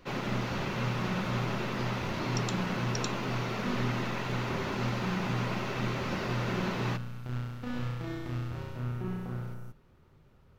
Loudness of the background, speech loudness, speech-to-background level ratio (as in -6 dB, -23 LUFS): -37.0 LUFS, -34.5 LUFS, 2.5 dB